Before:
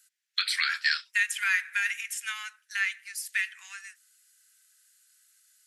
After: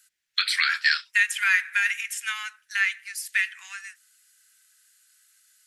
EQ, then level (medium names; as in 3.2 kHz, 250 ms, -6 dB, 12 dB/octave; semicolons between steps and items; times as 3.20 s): tone controls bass +8 dB, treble -3 dB; +5.0 dB